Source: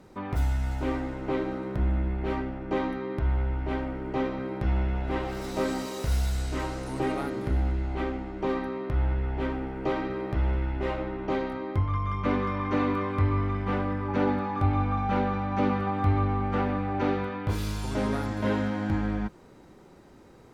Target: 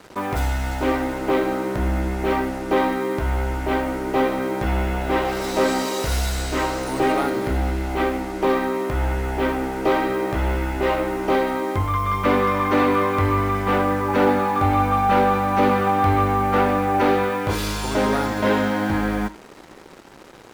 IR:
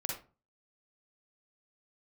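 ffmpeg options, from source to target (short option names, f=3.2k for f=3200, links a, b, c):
-filter_complex "[0:a]bass=f=250:g=-10,treble=f=4k:g=0,aeval=exprs='0.168*(cos(1*acos(clip(val(0)/0.168,-1,1)))-cos(1*PI/2))+0.0133*(cos(5*acos(clip(val(0)/0.168,-1,1)))-cos(5*PI/2))':c=same,acrusher=bits=7:mix=0:aa=0.5,asplit=2[a][b];[1:a]atrim=start_sample=2205[c];[b][c]afir=irnorm=-1:irlink=0,volume=-14dB[d];[a][d]amix=inputs=2:normalize=0,volume=7.5dB"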